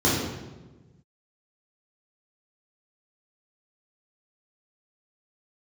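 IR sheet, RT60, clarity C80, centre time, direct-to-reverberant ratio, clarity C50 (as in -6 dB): 1.2 s, 3.0 dB, 78 ms, -7.0 dB, 0.5 dB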